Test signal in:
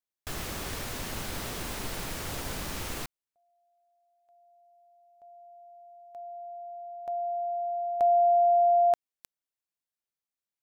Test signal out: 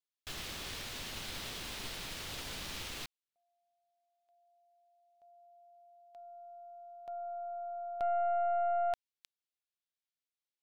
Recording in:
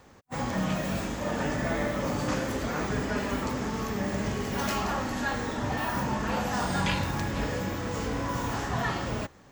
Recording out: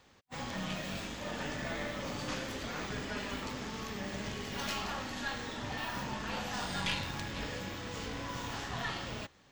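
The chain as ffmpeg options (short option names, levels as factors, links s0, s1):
-af "equalizer=f=3500:t=o:w=1.7:g=10.5,aeval=exprs='(tanh(5.62*val(0)+0.55)-tanh(0.55))/5.62':c=same,volume=0.398"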